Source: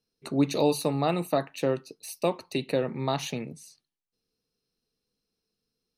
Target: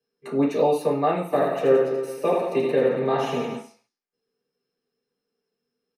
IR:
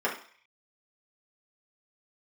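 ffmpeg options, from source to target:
-filter_complex "[0:a]asplit=3[a][b][c];[a]afade=t=out:st=1.31:d=0.02[d];[b]aecho=1:1:80|172|277.8|399.5|539.4:0.631|0.398|0.251|0.158|0.1,afade=t=in:st=1.31:d=0.02,afade=t=out:st=3.56:d=0.02[e];[c]afade=t=in:st=3.56:d=0.02[f];[d][e][f]amix=inputs=3:normalize=0[g];[1:a]atrim=start_sample=2205,afade=t=out:st=0.37:d=0.01,atrim=end_sample=16758[h];[g][h]afir=irnorm=-1:irlink=0,volume=-7dB"

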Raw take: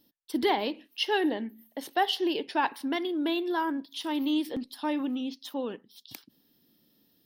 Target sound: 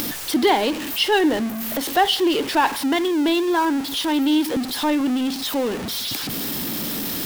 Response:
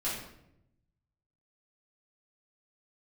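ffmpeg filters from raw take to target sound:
-af "aeval=exprs='val(0)+0.5*0.0282*sgn(val(0))':c=same,acompressor=mode=upward:threshold=-31dB:ratio=2.5,volume=7dB"

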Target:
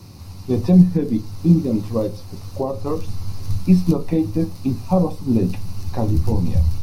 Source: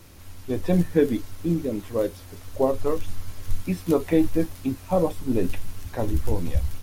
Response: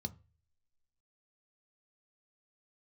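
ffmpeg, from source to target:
-filter_complex "[0:a]lowshelf=f=240:g=-7,alimiter=limit=-18dB:level=0:latency=1:release=434,asplit=2[a][b];[1:a]atrim=start_sample=2205,lowpass=4.9k[c];[b][c]afir=irnorm=-1:irlink=0,volume=9dB[d];[a][d]amix=inputs=2:normalize=0,volume=-1.5dB"

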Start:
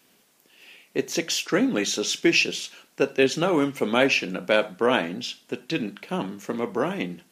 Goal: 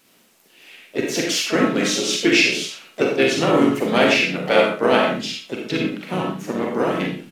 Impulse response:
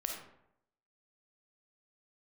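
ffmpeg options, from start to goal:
-filter_complex "[0:a]aecho=1:1:43|69:0.447|0.178[a];[1:a]atrim=start_sample=2205,atrim=end_sample=6174[b];[a][b]afir=irnorm=-1:irlink=0,asplit=4[c][d][e][f];[d]asetrate=29433,aresample=44100,atempo=1.49831,volume=-18dB[g];[e]asetrate=37084,aresample=44100,atempo=1.18921,volume=-6dB[h];[f]asetrate=58866,aresample=44100,atempo=0.749154,volume=-11dB[i];[c][g][h][i]amix=inputs=4:normalize=0,volume=2dB"

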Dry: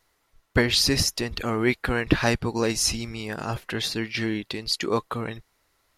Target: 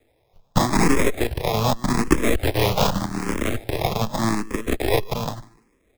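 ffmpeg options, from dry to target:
-filter_complex "[0:a]equalizer=f=9.5k:t=o:w=0.26:g=8.5,asplit=2[a][b];[b]acompressor=threshold=-28dB:ratio=6,volume=2dB[c];[a][c]amix=inputs=2:normalize=0,acrusher=samples=30:mix=1:aa=0.000001,aecho=1:1:148|296:0.112|0.0325,asplit=3[d][e][f];[d]afade=t=out:st=2.36:d=0.02[g];[e]afreqshift=-32,afade=t=in:st=2.36:d=0.02,afade=t=out:st=3.49:d=0.02[h];[f]afade=t=in:st=3.49:d=0.02[i];[g][h][i]amix=inputs=3:normalize=0,aeval=exprs='0.668*(cos(1*acos(clip(val(0)/0.668,-1,1)))-cos(1*PI/2))+0.168*(cos(8*acos(clip(val(0)/0.668,-1,1)))-cos(8*PI/2))':c=same,acrossover=split=280|1400[j][k][l];[j]acrusher=bits=2:mode=log:mix=0:aa=0.000001[m];[m][k][l]amix=inputs=3:normalize=0,asplit=2[n][o];[o]afreqshift=0.84[p];[n][p]amix=inputs=2:normalize=1"

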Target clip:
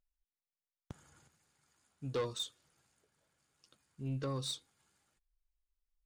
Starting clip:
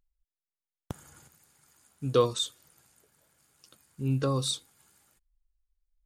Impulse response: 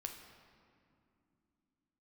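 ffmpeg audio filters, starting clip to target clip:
-af "highshelf=f=4k:g=6,adynamicsmooth=sensitivity=1.5:basefreq=6k,asoftclip=type=tanh:threshold=-21dB,volume=-8.5dB"

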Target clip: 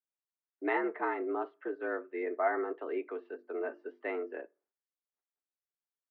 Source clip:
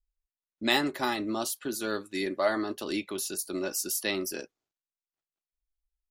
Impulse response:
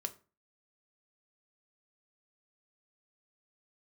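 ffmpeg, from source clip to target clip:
-filter_complex "[0:a]highpass=f=180:t=q:w=0.5412,highpass=f=180:t=q:w=1.307,lowpass=f=2k:t=q:w=0.5176,lowpass=f=2k:t=q:w=0.7071,lowpass=f=2k:t=q:w=1.932,afreqshift=68,asettb=1/sr,asplit=3[a][b][c];[a]atrim=end=2.804[d];[b]atrim=start=2.8:end=4.38,asetpts=PTS-STARTPTS,afade=t=in:d=0.004:c=qsin,afade=t=out:st=1.576:d=0.004:c=qsin,bandreject=f=50:t=h:w=6,bandreject=f=100:t=h:w=6,bandreject=f=150:t=h:w=6,bandreject=f=200:t=h:w=6,bandreject=f=250:t=h:w=6,bandreject=f=300:t=h:w=6,bandreject=f=350:t=h:w=6[e];[c]atrim=start=4.376[f];[d][e]acrossfade=d=0.004:c1=hsin:c2=qsin[g];[g][f]acrossfade=d=0.004:c1=qsin:c2=hsin,asplit=2[h][i];[1:a]atrim=start_sample=2205[j];[i][j]afir=irnorm=-1:irlink=0,volume=-11dB[k];[h][k]amix=inputs=2:normalize=0,volume=-5dB"

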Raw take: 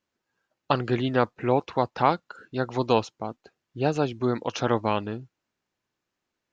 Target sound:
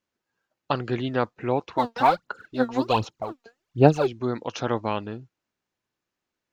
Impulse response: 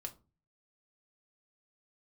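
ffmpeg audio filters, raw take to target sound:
-filter_complex "[0:a]asplit=3[a][b][c];[a]afade=t=out:st=1.76:d=0.02[d];[b]aphaser=in_gain=1:out_gain=1:delay=4.4:decay=0.77:speed=1.3:type=sinusoidal,afade=t=in:st=1.76:d=0.02,afade=t=out:st=4.06:d=0.02[e];[c]afade=t=in:st=4.06:d=0.02[f];[d][e][f]amix=inputs=3:normalize=0,volume=-2dB"

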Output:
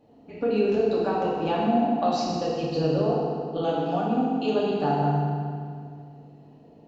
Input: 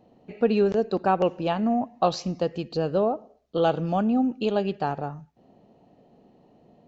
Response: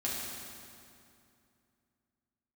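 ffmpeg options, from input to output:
-filter_complex "[0:a]asettb=1/sr,asplit=3[a][b][c];[a]atrim=end=3.614[d];[b]atrim=start=3.61:end=4.57,asetpts=PTS-STARTPTS,afade=t=in:d=0.004:c=qsin,afade=t=out:st=0.956:d=0.004:c=qsin,highpass=f=280:p=1[e];[c]atrim=start=4.566[f];[d][e]acrossfade=d=0.004:c1=hsin:c2=qsin[g];[g][f]acrossfade=d=0.004:c1=qsin:c2=hsin,acompressor=threshold=-23dB:ratio=6[h];[1:a]atrim=start_sample=2205,asetrate=52920,aresample=44100[i];[h][i]afir=irnorm=-1:irlink=0"

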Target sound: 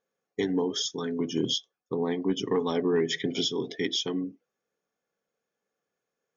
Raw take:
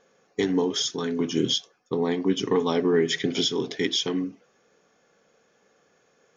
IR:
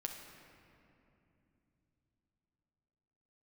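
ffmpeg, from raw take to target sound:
-af "asoftclip=type=hard:threshold=-14dB,afftdn=nr=18:nf=-39,volume=-3.5dB"

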